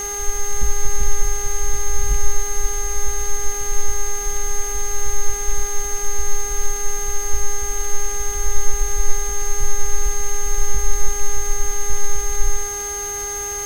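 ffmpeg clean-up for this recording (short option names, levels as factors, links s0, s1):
-af "adeclick=t=4,bandreject=f=407.1:t=h:w=4,bandreject=f=814.2:t=h:w=4,bandreject=f=1221.3:t=h:w=4,bandreject=f=1628.4:t=h:w=4,bandreject=f=2035.5:t=h:w=4,bandreject=f=6400:w=30,afwtdn=0.014"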